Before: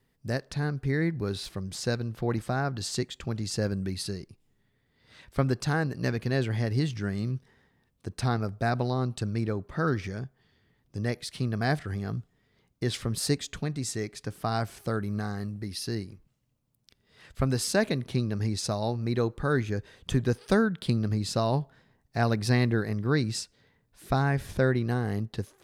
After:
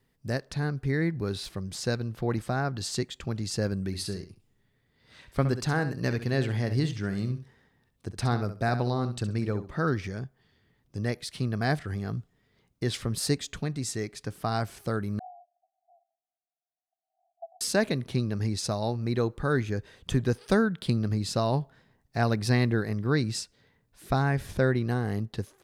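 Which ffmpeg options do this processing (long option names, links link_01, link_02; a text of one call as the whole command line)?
ffmpeg -i in.wav -filter_complex "[0:a]asplit=3[link_01][link_02][link_03];[link_01]afade=type=out:start_time=3.92:duration=0.02[link_04];[link_02]aecho=1:1:66|132:0.282|0.0479,afade=type=in:start_time=3.92:duration=0.02,afade=type=out:start_time=9.74:duration=0.02[link_05];[link_03]afade=type=in:start_time=9.74:duration=0.02[link_06];[link_04][link_05][link_06]amix=inputs=3:normalize=0,asettb=1/sr,asplit=3[link_07][link_08][link_09];[link_07]atrim=end=15.194[link_10];[link_08]atrim=start=15.19:end=17.61,asetpts=PTS-STARTPTS,afade=type=in:duration=0.004:curve=qsin,afade=type=out:start_time=2.416:duration=0.004:curve=qsin,asuperpass=centerf=720:order=8:qfactor=5.9[link_11];[link_09]atrim=start=17.606[link_12];[link_10][link_11]acrossfade=duration=0.004:curve1=hsin:curve2=qsin[link_13];[link_13][link_12]acrossfade=duration=0.004:curve1=qsin:curve2=hsin" out.wav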